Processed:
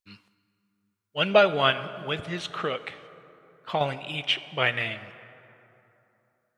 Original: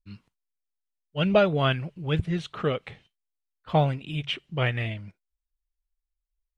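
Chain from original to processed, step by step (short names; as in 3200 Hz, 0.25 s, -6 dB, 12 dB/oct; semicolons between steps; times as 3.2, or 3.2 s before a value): HPF 810 Hz 6 dB/oct; 1.7–3.81 compressor 2.5:1, threshold -32 dBFS, peak gain reduction 7.5 dB; plate-style reverb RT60 3.1 s, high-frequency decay 0.5×, DRR 13 dB; gain +6 dB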